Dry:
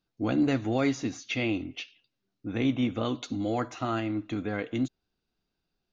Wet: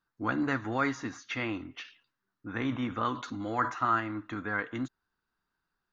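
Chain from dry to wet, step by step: band shelf 1300 Hz +14 dB 1.3 oct; 1.82–3.86 sustainer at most 140 dB/s; gain -6 dB

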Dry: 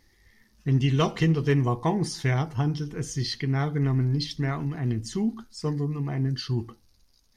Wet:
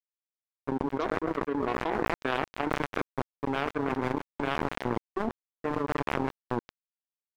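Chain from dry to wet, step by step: brick-wall FIR band-pass 230–1700 Hz; delay with a stepping band-pass 0.119 s, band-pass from 430 Hz, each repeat 0.7 oct, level -7.5 dB; added harmonics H 7 -19 dB, 8 -35 dB, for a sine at -12 dBFS; crossover distortion -42.5 dBFS; fast leveller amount 100%; gain -8 dB

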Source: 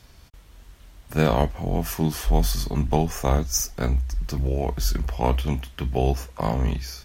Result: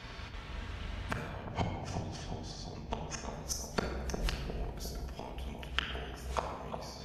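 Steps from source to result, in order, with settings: 1.29–3.33 LPF 6400 Hz 24 dB/oct; low-pass opened by the level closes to 2500 Hz, open at -21.5 dBFS; HPF 52 Hz 12 dB/oct; tilt shelf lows -4 dB; compressor 20:1, threshold -26 dBFS, peak gain reduction 12 dB; flipped gate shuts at -25 dBFS, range -25 dB; analogue delay 0.355 s, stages 2048, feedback 60%, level -5.5 dB; shoebox room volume 1700 m³, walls mixed, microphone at 1.6 m; gain +8.5 dB; MP2 96 kbps 48000 Hz

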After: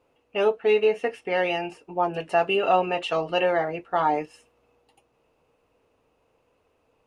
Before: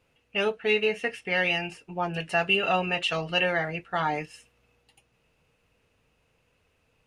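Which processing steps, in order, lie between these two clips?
band shelf 560 Hz +10.5 dB 2.5 oct; gain -4.5 dB

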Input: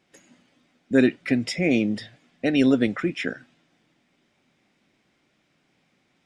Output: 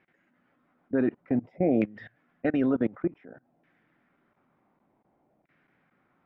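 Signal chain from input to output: level quantiser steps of 23 dB; LFO low-pass saw down 0.55 Hz 700–1900 Hz; gain -1 dB

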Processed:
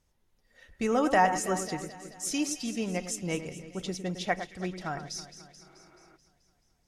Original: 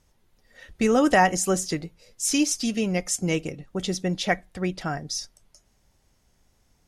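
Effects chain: echo with dull and thin repeats by turns 0.108 s, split 2300 Hz, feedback 78%, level -10 dB; spectral repair 5.67–6.14, 220–2900 Hz before; dynamic EQ 970 Hz, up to +6 dB, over -35 dBFS, Q 0.96; gain -8.5 dB

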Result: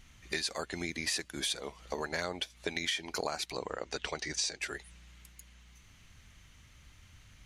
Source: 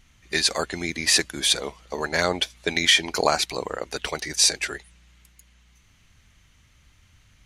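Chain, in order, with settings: 3.52–4.6 LPF 7800 Hz 24 dB/oct; compressor 4:1, threshold -34 dBFS, peak gain reduction 17.5 dB

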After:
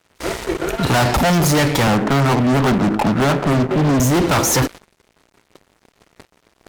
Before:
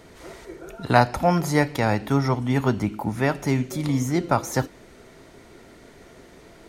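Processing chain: 1.87–4 elliptic band-pass 140–1500 Hz; fuzz box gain 35 dB, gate -44 dBFS; gate -32 dBFS, range -19 dB

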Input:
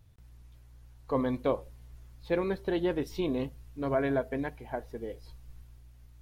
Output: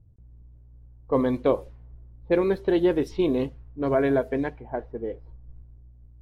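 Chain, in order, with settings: dynamic EQ 380 Hz, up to +5 dB, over -41 dBFS, Q 1.5; low-pass opened by the level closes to 370 Hz, open at -24 dBFS; gain +4 dB

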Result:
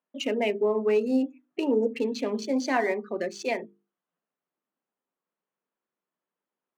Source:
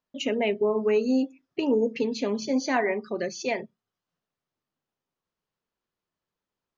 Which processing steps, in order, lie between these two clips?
Wiener smoothing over 9 samples; HPF 190 Hz 24 dB/oct; notches 50/100/150/200/250/300/350/400/450 Hz

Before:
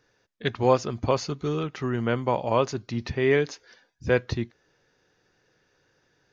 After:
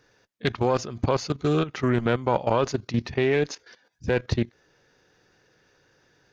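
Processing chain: one diode to ground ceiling -12 dBFS; level quantiser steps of 14 dB; Doppler distortion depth 0.27 ms; gain +7 dB

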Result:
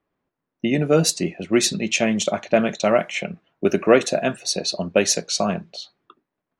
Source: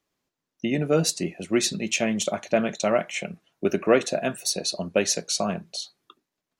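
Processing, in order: low-pass opened by the level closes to 1700 Hz, open at -18.5 dBFS; gain +4.5 dB

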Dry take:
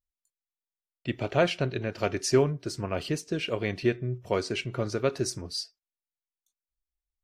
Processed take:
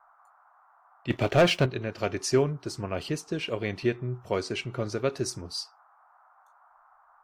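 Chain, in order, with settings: 1.1–1.66 sample leveller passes 2; band noise 700–1400 Hz -59 dBFS; gain -1 dB

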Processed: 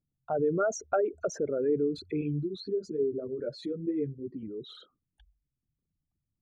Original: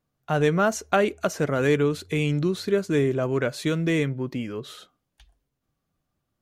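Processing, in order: formant sharpening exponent 3; 2.21–4.43 ensemble effect; gain -6 dB

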